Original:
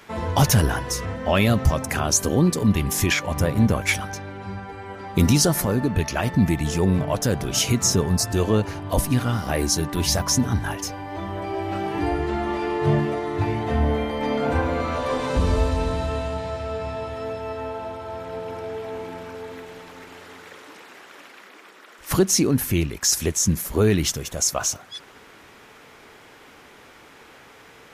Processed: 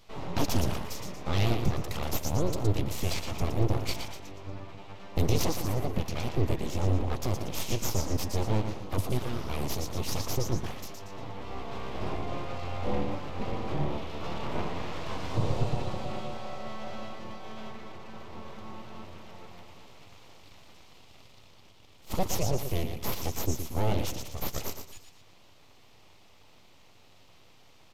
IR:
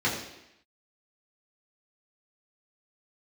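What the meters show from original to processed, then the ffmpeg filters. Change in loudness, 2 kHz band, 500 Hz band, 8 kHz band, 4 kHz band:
−10.5 dB, −13.0 dB, −10.0 dB, −16.0 dB, −10.5 dB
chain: -af "aecho=1:1:117|234|351|468:0.422|0.152|0.0547|0.0197,aeval=exprs='abs(val(0))':channel_layout=same,equalizer=frequency=100:width_type=o:width=0.67:gain=8,equalizer=frequency=1600:width_type=o:width=0.67:gain=-10,equalizer=frequency=10000:width_type=o:width=0.67:gain=-9,aresample=32000,aresample=44100,volume=-7dB"

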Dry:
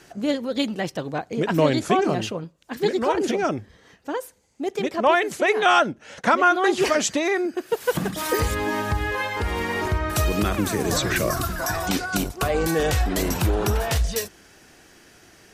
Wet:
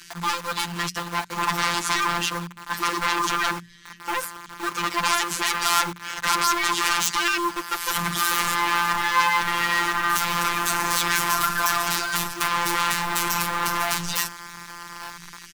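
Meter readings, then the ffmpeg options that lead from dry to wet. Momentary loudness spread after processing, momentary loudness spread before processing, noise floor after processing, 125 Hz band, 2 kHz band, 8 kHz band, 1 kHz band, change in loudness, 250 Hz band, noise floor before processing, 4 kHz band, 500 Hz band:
9 LU, 9 LU, −43 dBFS, −10.0 dB, +3.0 dB, +5.0 dB, +2.5 dB, 0.0 dB, −9.0 dB, −54 dBFS, +5.0 dB, −13.5 dB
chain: -filter_complex "[0:a]asplit=2[link_01][link_02];[link_02]aeval=exprs='0.531*sin(PI/2*8.91*val(0)/0.531)':channel_layout=same,volume=-6.5dB[link_03];[link_01][link_03]amix=inputs=2:normalize=0,asplit=2[link_04][link_05];[link_05]adelay=1191,lowpass=frequency=1200:poles=1,volume=-15dB,asplit=2[link_06][link_07];[link_07]adelay=1191,lowpass=frequency=1200:poles=1,volume=0.47,asplit=2[link_08][link_09];[link_09]adelay=1191,lowpass=frequency=1200:poles=1,volume=0.47,asplit=2[link_10][link_11];[link_11]adelay=1191,lowpass=frequency=1200:poles=1,volume=0.47[link_12];[link_04][link_06][link_08][link_10][link_12]amix=inputs=5:normalize=0,afftfilt=real='hypot(re,im)*cos(PI*b)':imag='0':win_size=1024:overlap=0.75,acrossover=split=290|1800[link_13][link_14][link_15];[link_14]acrusher=bits=4:mix=0:aa=0.000001[link_16];[link_13][link_16][link_15]amix=inputs=3:normalize=0,lowshelf=frequency=780:width_type=q:width=3:gain=-8,bandreject=frequency=60:width_type=h:width=6,bandreject=frequency=120:width_type=h:width=6,bandreject=frequency=180:width_type=h:width=6,volume=-5.5dB"

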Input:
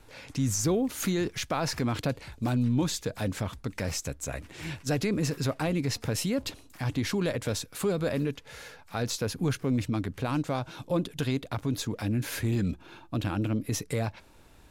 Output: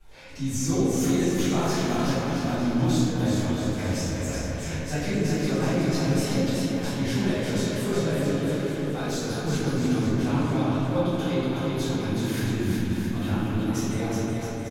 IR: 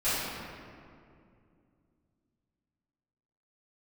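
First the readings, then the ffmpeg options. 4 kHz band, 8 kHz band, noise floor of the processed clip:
+2.5 dB, +1.5 dB, −31 dBFS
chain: -filter_complex "[0:a]aecho=1:1:370|666|902.8|1092|1244:0.631|0.398|0.251|0.158|0.1[link_01];[1:a]atrim=start_sample=2205,asetrate=57330,aresample=44100[link_02];[link_01][link_02]afir=irnorm=-1:irlink=0,volume=-8dB"

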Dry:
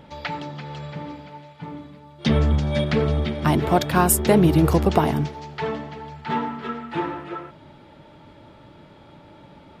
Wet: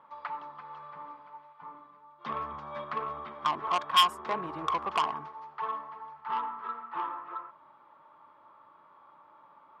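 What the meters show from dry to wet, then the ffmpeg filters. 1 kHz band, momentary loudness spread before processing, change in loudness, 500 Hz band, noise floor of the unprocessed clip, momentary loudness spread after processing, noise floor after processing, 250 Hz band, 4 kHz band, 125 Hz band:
−3.0 dB, 19 LU, −10.5 dB, −18.5 dB, −49 dBFS, 20 LU, −59 dBFS, −25.5 dB, +1.0 dB, −31.5 dB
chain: -af "lowpass=frequency=1100:width_type=q:width=13,acontrast=26,aderivative,volume=-1.5dB"

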